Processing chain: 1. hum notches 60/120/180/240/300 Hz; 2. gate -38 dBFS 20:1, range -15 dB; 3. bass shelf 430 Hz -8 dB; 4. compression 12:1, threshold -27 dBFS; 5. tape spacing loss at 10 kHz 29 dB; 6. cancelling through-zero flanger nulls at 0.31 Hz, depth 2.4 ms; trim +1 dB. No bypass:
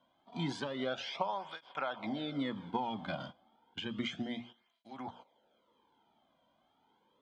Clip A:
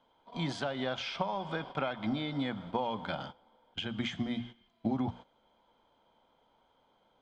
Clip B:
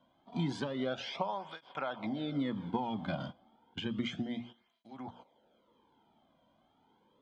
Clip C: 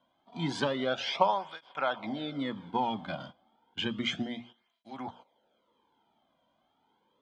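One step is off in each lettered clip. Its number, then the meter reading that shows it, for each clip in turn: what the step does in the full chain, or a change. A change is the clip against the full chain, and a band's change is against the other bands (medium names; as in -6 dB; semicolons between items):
6, momentary loudness spread change -4 LU; 3, 125 Hz band +5.5 dB; 4, mean gain reduction 3.5 dB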